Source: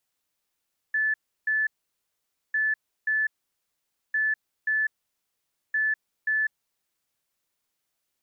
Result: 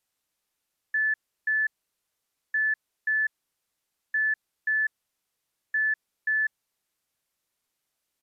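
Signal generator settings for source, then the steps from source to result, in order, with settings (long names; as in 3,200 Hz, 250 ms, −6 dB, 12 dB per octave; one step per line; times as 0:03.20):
beeps in groups sine 1,740 Hz, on 0.20 s, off 0.33 s, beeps 2, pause 0.87 s, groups 4, −21.5 dBFS
downsampling to 32,000 Hz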